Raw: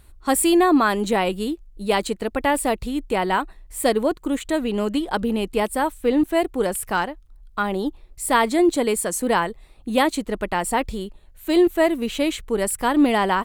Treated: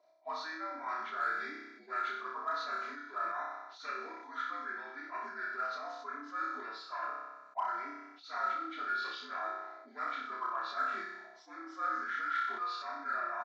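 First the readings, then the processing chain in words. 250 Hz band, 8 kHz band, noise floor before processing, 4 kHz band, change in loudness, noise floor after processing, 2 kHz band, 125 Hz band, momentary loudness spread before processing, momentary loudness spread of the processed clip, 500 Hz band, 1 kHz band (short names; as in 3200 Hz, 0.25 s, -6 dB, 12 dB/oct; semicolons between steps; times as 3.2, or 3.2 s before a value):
-32.0 dB, under -30 dB, -49 dBFS, -18.0 dB, -16.5 dB, -57 dBFS, -11.0 dB, under -40 dB, 10 LU, 8 LU, -26.5 dB, -12.0 dB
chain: inharmonic rescaling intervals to 78%; Chebyshev high-pass 160 Hz, order 3; tilt +3 dB/oct; comb 3 ms, depth 60%; dynamic EQ 240 Hz, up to +4 dB, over -33 dBFS, Q 2.1; reverse; compressor 6:1, threshold -28 dBFS, peak gain reduction 16.5 dB; reverse; auto-wah 600–1400 Hz, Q 11, up, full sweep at -28.5 dBFS; in parallel at -11 dB: hard clip -39.5 dBFS, distortion -15 dB; on the sum: flutter echo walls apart 5.3 m, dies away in 0.66 s; sustainer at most 47 dB/s; gain +5 dB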